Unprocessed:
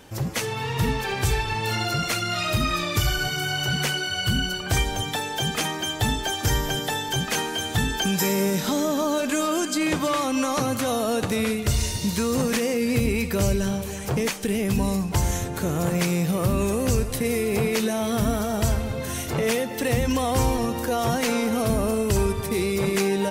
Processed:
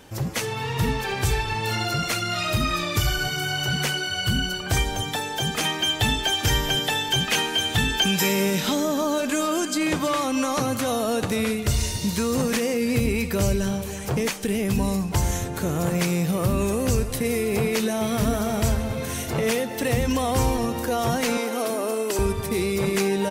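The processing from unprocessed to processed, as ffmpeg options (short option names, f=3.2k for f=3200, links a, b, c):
-filter_complex "[0:a]asettb=1/sr,asplit=3[a][b][c];[a]atrim=end=5.634[d];[b]atrim=start=5.63:end=8.75,asetpts=PTS-STARTPTS,afade=t=in:d=0.004:c=qsin,afade=t=out:st=3.116:d=0.004:c=qsin,equalizer=f=2.8k:w=1.4:g=7.5[e];[c]atrim=start=8.746[f];[d][e]acrossfade=d=0.004:c1=hsin:c2=qsin[g];[g][f]acrossfade=d=0.004:c1=qsin:c2=hsin,asplit=2[h][i];[i]afade=t=in:st=17.55:d=0.01,afade=t=out:st=18.15:d=0.01,aecho=0:1:450|900|1350|1800|2250|2700|3150|3600|4050|4500|4950|5400:0.298538|0.223904|0.167928|0.125946|0.0944594|0.0708445|0.0531334|0.03985|0.0298875|0.0224157|0.0168117|0.0126088[j];[h][j]amix=inputs=2:normalize=0,asettb=1/sr,asplit=3[k][l][m];[k]atrim=end=21.374[n];[l]atrim=start=21.37:end=22.19,asetpts=PTS-STARTPTS,afade=t=in:d=0.004:c=qsin,afade=t=out:st=0.816:d=0.004:c=qsin,highpass=f=280:w=0.5412,highpass=f=280:w=1.3066[o];[m]atrim=start=22.186[p];[n][o]acrossfade=d=0.004:c1=hsin:c2=qsin[q];[q][p]acrossfade=d=0.004:c1=qsin:c2=hsin"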